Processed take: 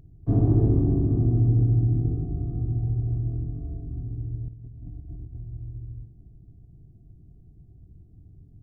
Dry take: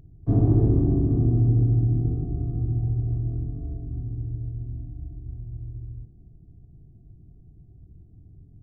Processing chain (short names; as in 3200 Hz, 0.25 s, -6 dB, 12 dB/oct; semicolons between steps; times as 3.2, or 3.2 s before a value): 4.48–5.38 negative-ratio compressor -37 dBFS, ratio -0.5; on a send: darkening echo 0.291 s, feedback 59%, low-pass 860 Hz, level -18.5 dB; on the sum: gain -1 dB